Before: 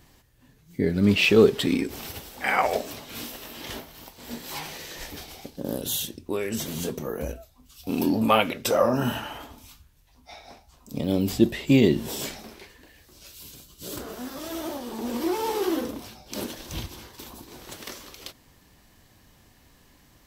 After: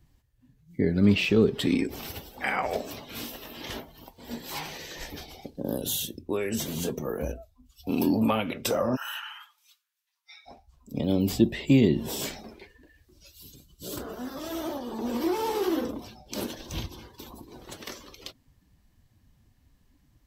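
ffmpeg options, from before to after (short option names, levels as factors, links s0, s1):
-filter_complex "[0:a]asplit=3[s0][s1][s2];[s0]afade=t=out:st=8.95:d=0.02[s3];[s1]highpass=f=1200:w=0.5412,highpass=f=1200:w=1.3066,afade=t=in:st=8.95:d=0.02,afade=t=out:st=10.45:d=0.02[s4];[s2]afade=t=in:st=10.45:d=0.02[s5];[s3][s4][s5]amix=inputs=3:normalize=0,afftdn=nr=15:nf=-47,acrossover=split=300[s6][s7];[s7]acompressor=threshold=0.0562:ratio=6[s8];[s6][s8]amix=inputs=2:normalize=0"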